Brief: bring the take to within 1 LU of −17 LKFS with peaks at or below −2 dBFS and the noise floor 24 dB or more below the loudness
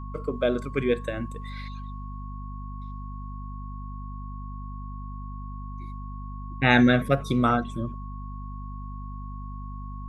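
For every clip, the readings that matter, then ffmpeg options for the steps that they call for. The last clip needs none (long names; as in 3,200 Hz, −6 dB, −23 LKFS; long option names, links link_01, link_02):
mains hum 50 Hz; hum harmonics up to 250 Hz; level of the hum −34 dBFS; interfering tone 1,100 Hz; level of the tone −43 dBFS; integrated loudness −29.0 LKFS; sample peak −5.0 dBFS; target loudness −17.0 LKFS
→ -af "bandreject=frequency=50:width_type=h:width=4,bandreject=frequency=100:width_type=h:width=4,bandreject=frequency=150:width_type=h:width=4,bandreject=frequency=200:width_type=h:width=4,bandreject=frequency=250:width_type=h:width=4"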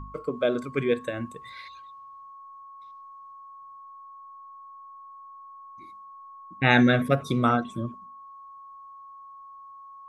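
mains hum none found; interfering tone 1,100 Hz; level of the tone −43 dBFS
→ -af "bandreject=frequency=1100:width=30"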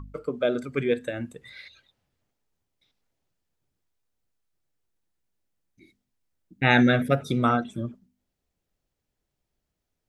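interfering tone none found; integrated loudness −24.5 LKFS; sample peak −5.5 dBFS; target loudness −17.0 LKFS
→ -af "volume=7.5dB,alimiter=limit=-2dB:level=0:latency=1"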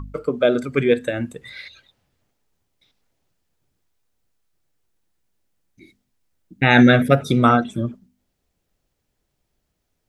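integrated loudness −17.5 LKFS; sample peak −2.0 dBFS; background noise floor −75 dBFS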